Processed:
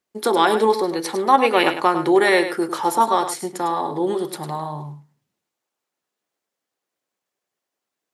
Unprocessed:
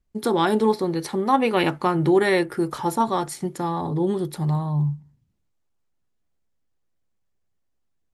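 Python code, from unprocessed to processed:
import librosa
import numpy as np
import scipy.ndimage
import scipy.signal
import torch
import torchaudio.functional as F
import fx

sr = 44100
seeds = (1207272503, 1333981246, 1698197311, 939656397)

p1 = scipy.signal.sosfilt(scipy.signal.butter(2, 400.0, 'highpass', fs=sr, output='sos'), x)
p2 = p1 + fx.echo_single(p1, sr, ms=103, db=-10.0, dry=0)
y = p2 * librosa.db_to_amplitude(5.5)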